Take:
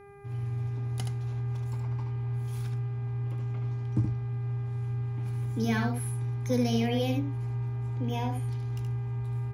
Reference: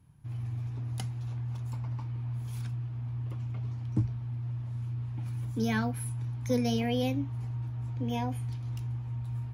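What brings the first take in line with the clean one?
de-hum 401.9 Hz, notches 6; inverse comb 74 ms -5.5 dB

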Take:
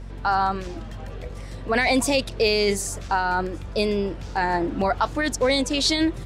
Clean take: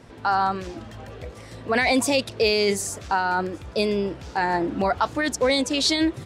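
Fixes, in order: de-hum 46.6 Hz, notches 5

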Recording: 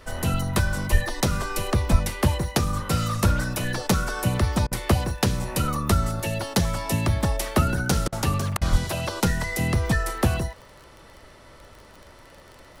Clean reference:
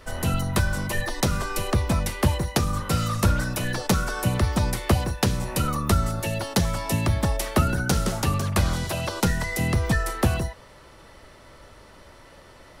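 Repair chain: de-click; de-plosive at 0.91/1.91/8.71 s; interpolate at 4.67/8.08/8.57 s, 43 ms

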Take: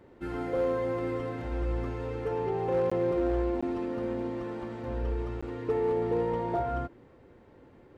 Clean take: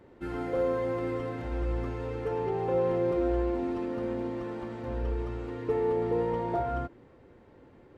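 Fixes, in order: clip repair -21 dBFS; interpolate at 2.90/3.61/5.41 s, 15 ms

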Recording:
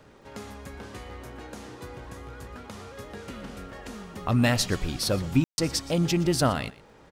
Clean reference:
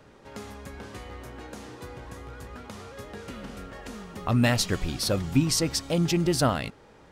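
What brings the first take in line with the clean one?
de-click; room tone fill 5.44–5.58 s; inverse comb 120 ms -19.5 dB

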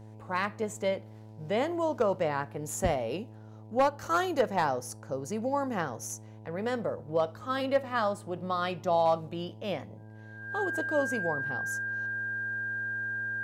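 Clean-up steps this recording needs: clip repair -17.5 dBFS; de-hum 108.4 Hz, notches 9; band-stop 1.6 kHz, Q 30

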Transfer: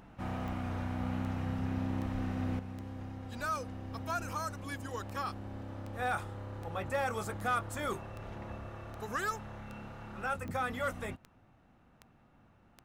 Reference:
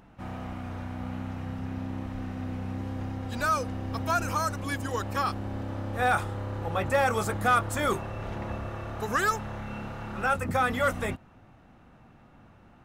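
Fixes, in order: de-click; trim 0 dB, from 2.59 s +9 dB

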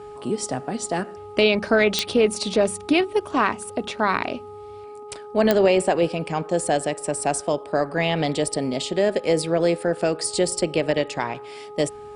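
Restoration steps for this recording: de-click; de-hum 417.1 Hz, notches 3

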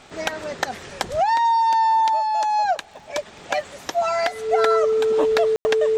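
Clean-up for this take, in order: de-click; band-stop 440 Hz, Q 30; room tone fill 5.56–5.65 s

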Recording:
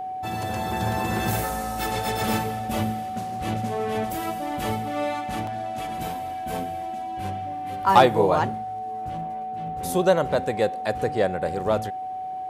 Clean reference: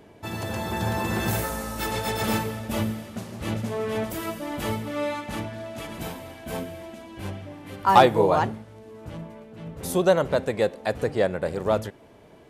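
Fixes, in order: band-stop 750 Hz, Q 30; interpolate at 5.47 s, 2.5 ms

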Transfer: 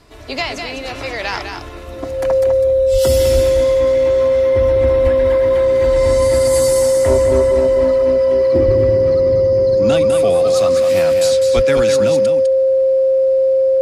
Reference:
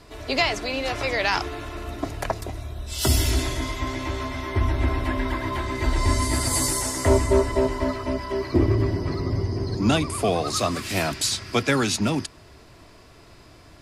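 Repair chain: band-stop 530 Hz, Q 30; de-plosive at 2.92/3.34/5.03/8.65/11.55 s; inverse comb 203 ms -6.5 dB

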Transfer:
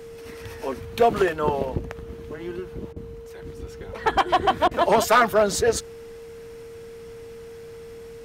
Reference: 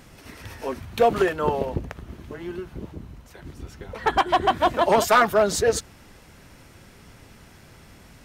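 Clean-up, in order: band-stop 460 Hz, Q 30; interpolate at 2.93/4.68 s, 31 ms

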